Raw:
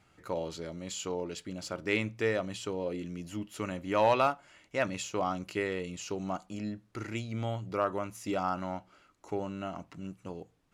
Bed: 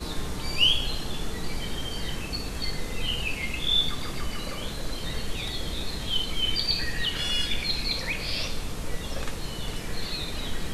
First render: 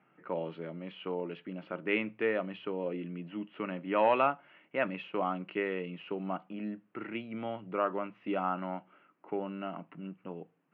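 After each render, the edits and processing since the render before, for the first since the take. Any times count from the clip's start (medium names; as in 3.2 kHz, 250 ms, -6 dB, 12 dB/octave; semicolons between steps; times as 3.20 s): Chebyshev band-pass 150–2900 Hz, order 4; level-controlled noise filter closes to 2.2 kHz, open at -28 dBFS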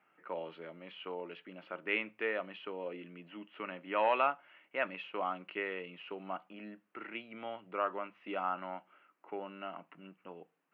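high-pass 790 Hz 6 dB/octave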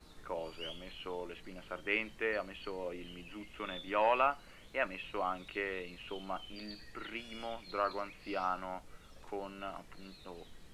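add bed -25 dB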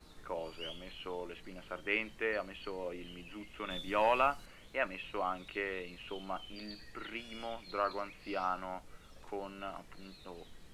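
3.70–4.46 s: tone controls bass +6 dB, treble +8 dB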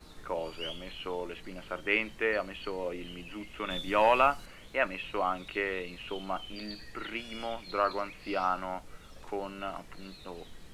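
trim +5.5 dB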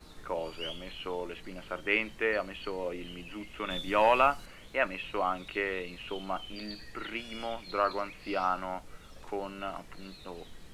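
no audible change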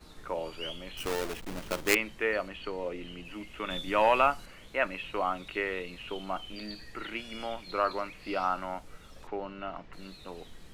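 0.97–1.95 s: square wave that keeps the level; 2.48–3.25 s: treble shelf 9.3 kHz -10 dB; 9.27–9.93 s: distance through air 190 m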